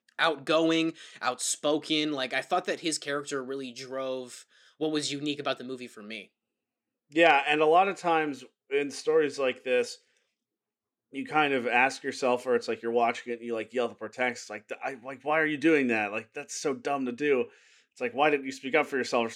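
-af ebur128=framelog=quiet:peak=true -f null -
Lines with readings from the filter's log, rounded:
Integrated loudness:
  I:         -28.1 LUFS
  Threshold: -38.5 LUFS
Loudness range:
  LRA:         6.8 LU
  Threshold: -49.0 LUFS
  LRA low:   -32.9 LUFS
  LRA high:  -26.1 LUFS
True peak:
  Peak:       -6.9 dBFS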